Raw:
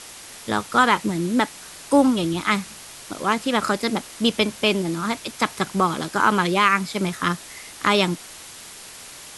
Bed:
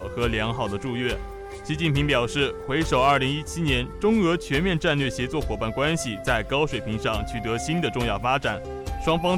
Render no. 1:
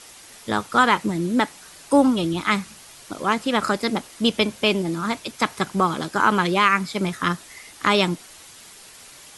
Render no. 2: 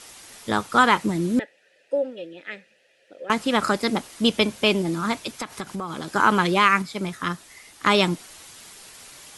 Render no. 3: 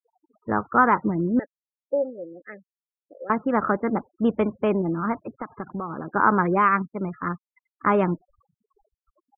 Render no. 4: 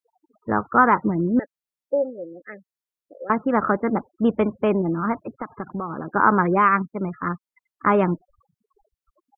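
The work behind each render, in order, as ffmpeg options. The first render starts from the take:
-af "afftdn=nr=6:nf=-41"
-filter_complex "[0:a]asettb=1/sr,asplit=3[a][b][c];[a]atrim=end=1.394[d];[b]atrim=start=1.39:end=3.3,asetpts=PTS-STARTPTS,afade=t=in:d=0.004:c=qsin,afade=t=out:st=1.906:d=0.004:c=qsin,asplit=3[e][f][g];[e]bandpass=f=530:t=q:w=8,volume=0dB[h];[f]bandpass=f=1.84k:t=q:w=8,volume=-6dB[i];[g]bandpass=f=2.48k:t=q:w=8,volume=-9dB[j];[h][i][j]amix=inputs=3:normalize=0[k];[c]atrim=start=3.296[l];[d][k]acrossfade=d=0.004:c1=hsin:c2=qsin[m];[m][l]acrossfade=d=0.004:c1=qsin:c2=hsin,asettb=1/sr,asplit=3[n][o][p];[n]atrim=end=5.414[q];[o]atrim=start=5.41:end=6.08,asetpts=PTS-STARTPTS,afade=t=in:d=0.004:c=qsin,afade=t=out:st=0.666:d=0.004:c=qsin,acompressor=threshold=-27dB:ratio=6:attack=3.2:release=140:knee=1:detection=peak[r];[p]atrim=start=6.076[s];[q][r]acrossfade=d=0.004:c1=hsin:c2=qsin[t];[t][s]acrossfade=d=0.004:c1=qsin:c2=hsin,asplit=3[u][v][w];[u]atrim=end=6.822[x];[v]atrim=start=6.818:end=7.862,asetpts=PTS-STARTPTS,volume=-4.5dB[y];[w]atrim=start=7.858[z];[x][y]acrossfade=d=0.004:c1=hsin:c2=hsin[aa];[aa][z]acrossfade=d=0.004:c1=hsin:c2=hsin"
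-af "lowpass=f=1.6k:w=0.5412,lowpass=f=1.6k:w=1.3066,afftfilt=real='re*gte(hypot(re,im),0.0126)':imag='im*gte(hypot(re,im),0.0126)':win_size=1024:overlap=0.75"
-af "volume=2dB"

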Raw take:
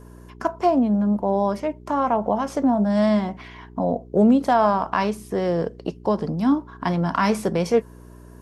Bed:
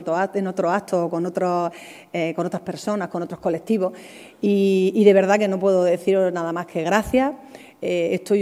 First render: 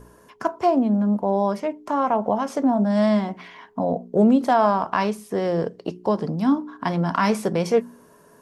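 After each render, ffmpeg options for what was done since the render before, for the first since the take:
-af "bandreject=f=60:t=h:w=4,bandreject=f=120:t=h:w=4,bandreject=f=180:t=h:w=4,bandreject=f=240:t=h:w=4,bandreject=f=300:t=h:w=4,bandreject=f=360:t=h:w=4"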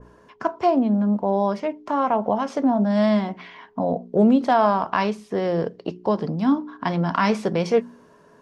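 -af "lowpass=4.5k,adynamicequalizer=threshold=0.0224:dfrequency=2300:dqfactor=0.7:tfrequency=2300:tqfactor=0.7:attack=5:release=100:ratio=0.375:range=2:mode=boostabove:tftype=highshelf"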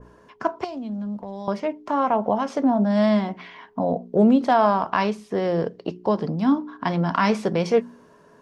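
-filter_complex "[0:a]asettb=1/sr,asplit=3[a][b][c];[a]atrim=end=0.644[d];[b]atrim=start=0.64:end=1.48,asetpts=PTS-STARTPTS,afade=t=in:d=0.004:c=qsin,afade=t=out:st=0.836:d=0.004:c=qsin,acrossover=split=130|3000[e][f][g];[f]acompressor=threshold=-33dB:ratio=5:attack=3.2:release=140:knee=2.83:detection=peak[h];[e][h][g]amix=inputs=3:normalize=0[i];[c]atrim=start=1.476[j];[d][i]acrossfade=d=0.004:c1=hsin:c2=qsin[k];[k][j]acrossfade=d=0.004:c1=qsin:c2=hsin"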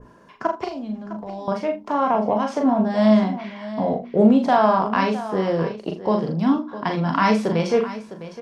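-filter_complex "[0:a]asplit=2[a][b];[b]adelay=37,volume=-7dB[c];[a][c]amix=inputs=2:normalize=0,aecho=1:1:42|658:0.447|0.211"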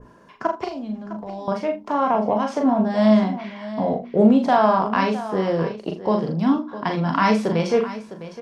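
-af anull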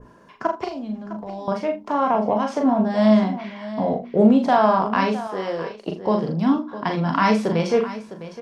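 -filter_complex "[0:a]asettb=1/sr,asplit=3[a][b][c];[a]atrim=end=5.274[d];[b]atrim=start=5.27:end=5.87,asetpts=PTS-STARTPTS,afade=t=in:d=0.004:c=qsin,afade=t=out:st=0.596:d=0.004:c=qsin,equalizer=f=110:w=0.43:g=-15[e];[c]atrim=start=5.866[f];[d][e]acrossfade=d=0.004:c1=hsin:c2=qsin[g];[g][f]acrossfade=d=0.004:c1=qsin:c2=hsin"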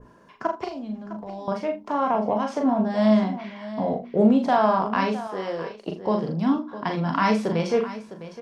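-af "volume=-3dB"

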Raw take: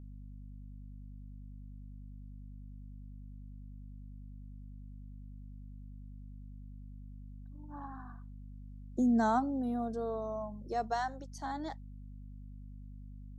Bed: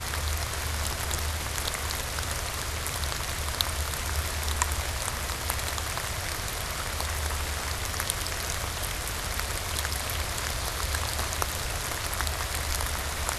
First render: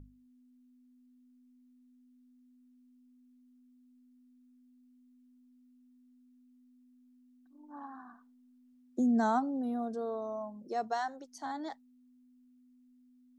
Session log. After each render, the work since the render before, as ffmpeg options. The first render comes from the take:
-af "bandreject=f=50:t=h:w=6,bandreject=f=100:t=h:w=6,bandreject=f=150:t=h:w=6,bandreject=f=200:t=h:w=6"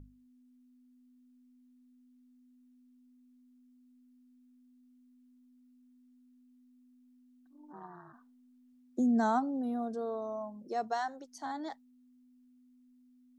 -filter_complex "[0:a]asplit=3[a][b][c];[a]afade=t=out:st=7.72:d=0.02[d];[b]aeval=exprs='val(0)*sin(2*PI*90*n/s)':c=same,afade=t=in:st=7.72:d=0.02,afade=t=out:st=8.12:d=0.02[e];[c]afade=t=in:st=8.12:d=0.02[f];[d][e][f]amix=inputs=3:normalize=0"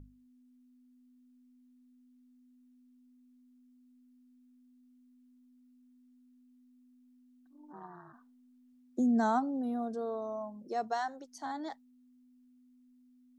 -af anull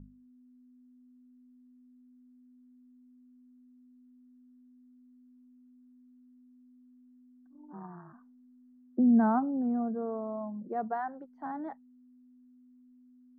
-af "lowpass=f=1.7k:w=0.5412,lowpass=f=1.7k:w=1.3066,equalizer=f=190:t=o:w=0.65:g=10.5"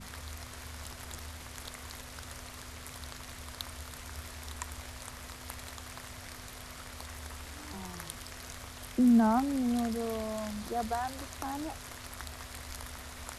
-filter_complex "[1:a]volume=-14dB[a];[0:a][a]amix=inputs=2:normalize=0"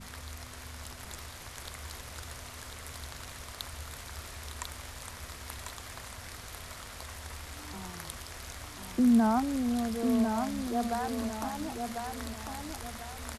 -af "aecho=1:1:1046|2092|3138|4184|5230:0.562|0.208|0.077|0.0285|0.0105"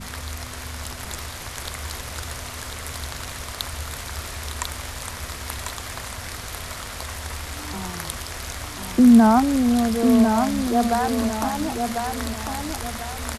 -af "volume=11dB"

